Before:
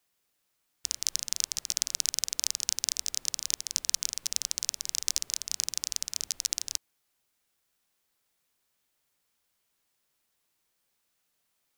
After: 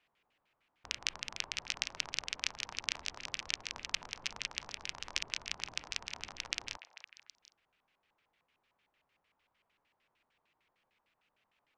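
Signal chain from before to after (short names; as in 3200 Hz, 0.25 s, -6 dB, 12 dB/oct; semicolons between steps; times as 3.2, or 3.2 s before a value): delay with a stepping band-pass 0.256 s, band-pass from 760 Hz, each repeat 1.4 oct, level -9 dB; LFO low-pass square 6.6 Hz 960–2600 Hz; gain +2.5 dB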